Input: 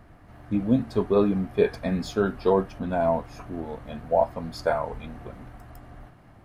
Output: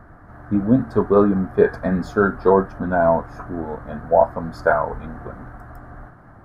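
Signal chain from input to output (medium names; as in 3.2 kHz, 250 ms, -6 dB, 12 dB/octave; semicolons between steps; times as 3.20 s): resonant high shelf 2 kHz -9.5 dB, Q 3; trim +5.5 dB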